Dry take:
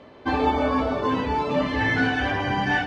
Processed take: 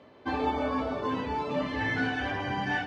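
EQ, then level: HPF 65 Hz; -7.0 dB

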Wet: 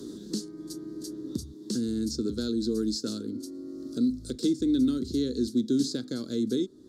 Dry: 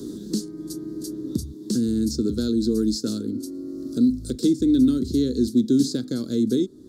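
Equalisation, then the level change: low shelf 420 Hz -8 dB; high shelf 10000 Hz -12 dB; -1.0 dB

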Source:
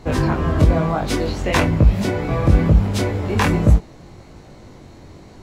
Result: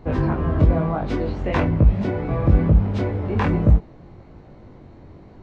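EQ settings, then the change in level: tape spacing loss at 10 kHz 31 dB; -1.5 dB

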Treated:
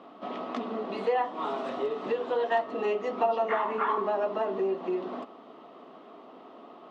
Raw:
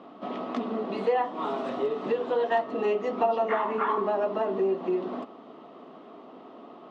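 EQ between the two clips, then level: low shelf 340 Hz -6.5 dB; 0.0 dB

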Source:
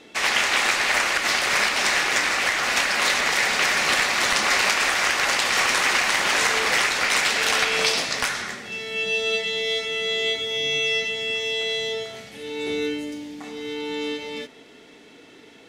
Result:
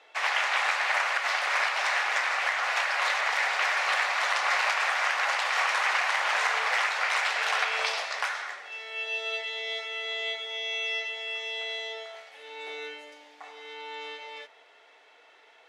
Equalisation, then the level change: HPF 660 Hz 24 dB/oct; LPF 1300 Hz 6 dB/oct; 0.0 dB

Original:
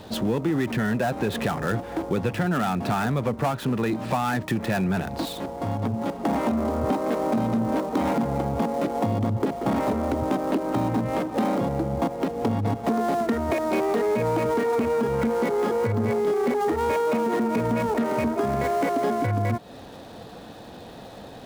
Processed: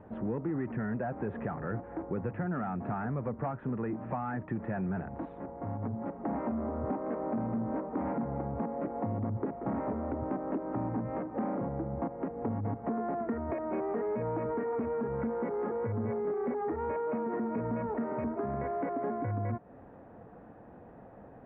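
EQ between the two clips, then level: inverse Chebyshev low-pass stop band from 6400 Hz, stop band 60 dB; air absorption 470 m; -8.5 dB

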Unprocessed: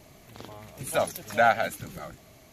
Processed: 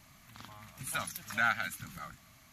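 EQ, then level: dynamic EQ 630 Hz, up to -8 dB, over -35 dBFS, Q 0.78; EQ curve 240 Hz 0 dB, 420 Hz -17 dB, 1200 Hz +7 dB, 2700 Hz +3 dB; -6.5 dB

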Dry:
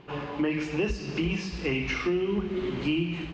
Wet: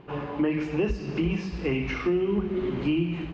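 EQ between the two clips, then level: high shelf 2500 Hz -11.5 dB; +2.5 dB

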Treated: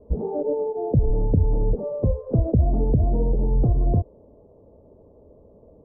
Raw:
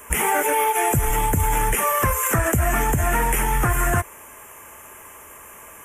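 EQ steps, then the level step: steep low-pass 570 Hz 36 dB/oct; bell 360 Hz -6.5 dB 0.24 oct; +3.0 dB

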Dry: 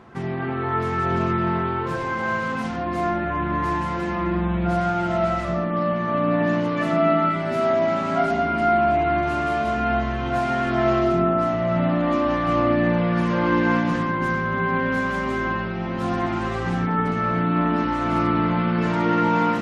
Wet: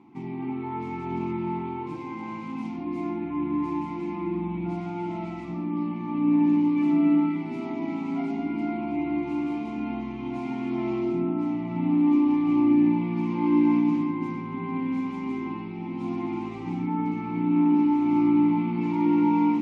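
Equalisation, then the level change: vowel filter u; tone controls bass +11 dB, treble +14 dB; low shelf 66 Hz -9.5 dB; +3.0 dB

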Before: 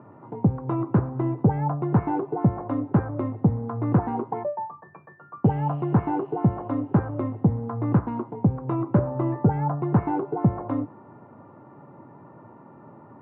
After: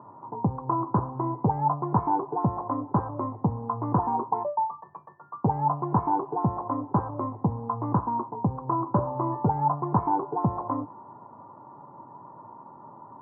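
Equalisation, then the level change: synth low-pass 1000 Hz, resonance Q 6.2; -6.0 dB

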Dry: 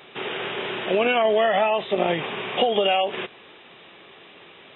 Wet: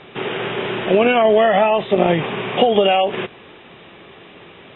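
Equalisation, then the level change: air absorption 170 m; low shelf 210 Hz +10 dB; +5.5 dB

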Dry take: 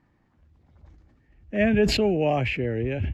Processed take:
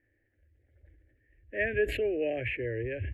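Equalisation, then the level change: EQ curve 120 Hz 0 dB, 170 Hz -27 dB, 300 Hz 0 dB, 550 Hz +4 dB, 1100 Hz -30 dB, 1700 Hz +9 dB, 3200 Hz -4 dB, 5100 Hz -27 dB, 9500 Hz 0 dB; -7.5 dB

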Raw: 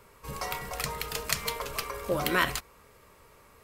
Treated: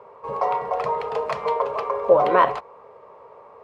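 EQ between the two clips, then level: BPF 120–2300 Hz; band shelf 680 Hz +15.5 dB; 0.0 dB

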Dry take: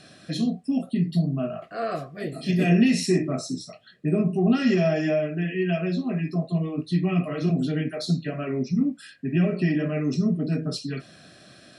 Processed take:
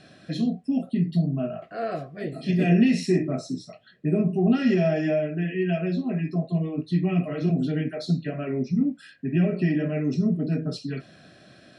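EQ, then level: LPF 2900 Hz 6 dB/oct; notch 1200 Hz, Q 13; dynamic EQ 1100 Hz, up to -5 dB, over -49 dBFS, Q 3.6; 0.0 dB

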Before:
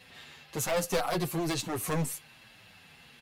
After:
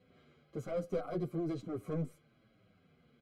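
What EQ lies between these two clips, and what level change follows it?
running mean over 49 samples; low shelf 190 Hz -10.5 dB; +1.0 dB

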